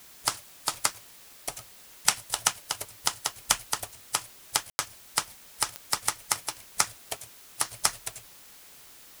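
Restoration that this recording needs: de-click; room tone fill 4.70–4.79 s; noise reduction 25 dB, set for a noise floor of -51 dBFS

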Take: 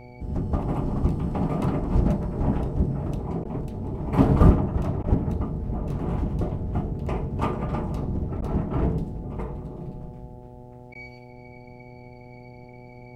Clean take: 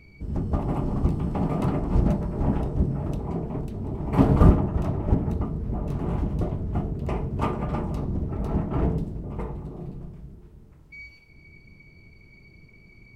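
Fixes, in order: de-hum 123 Hz, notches 7; interpolate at 3.44/5.03/8.41/10.94 s, 10 ms

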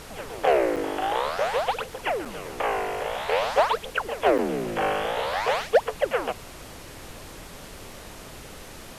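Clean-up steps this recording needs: clip repair -12 dBFS; de-click; interpolate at 0.76/2.25/4.38 s, 6 ms; noise reduction 29 dB, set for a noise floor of -42 dBFS

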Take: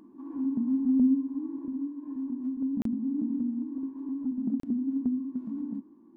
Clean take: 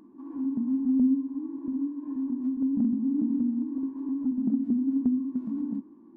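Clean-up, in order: interpolate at 2.82/4.60 s, 33 ms; trim 0 dB, from 1.65 s +3.5 dB

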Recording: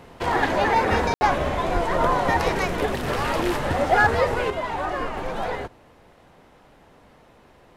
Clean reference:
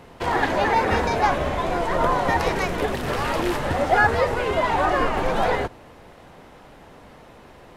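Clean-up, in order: clip repair -9.5 dBFS; 1.73–1.85 s: high-pass 140 Hz 24 dB/octave; room tone fill 1.14–1.21 s; 4.50 s: gain correction +6.5 dB

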